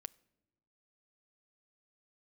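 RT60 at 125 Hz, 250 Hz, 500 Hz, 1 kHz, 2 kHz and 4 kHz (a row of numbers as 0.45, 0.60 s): 1.4, 1.2, 1.1, 1.0, 0.80, 0.65 s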